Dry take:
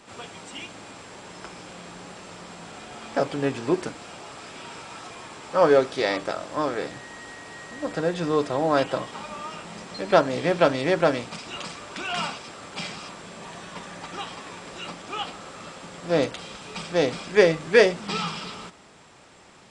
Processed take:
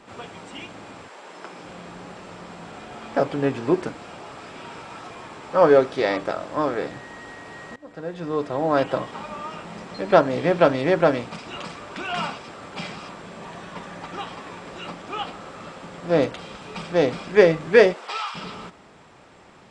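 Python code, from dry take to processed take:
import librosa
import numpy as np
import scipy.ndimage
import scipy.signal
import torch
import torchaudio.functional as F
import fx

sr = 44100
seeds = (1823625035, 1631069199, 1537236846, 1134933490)

y = fx.highpass(x, sr, hz=fx.line((1.07, 620.0), (1.63, 170.0)), slope=12, at=(1.07, 1.63), fade=0.02)
y = fx.highpass(y, sr, hz=fx.line((17.92, 350.0), (18.34, 860.0)), slope=24, at=(17.92, 18.34), fade=0.02)
y = fx.edit(y, sr, fx.fade_in_from(start_s=7.76, length_s=1.19, floor_db=-21.0), tone=tone)
y = fx.high_shelf(y, sr, hz=3700.0, db=-11.5)
y = y * librosa.db_to_amplitude(3.0)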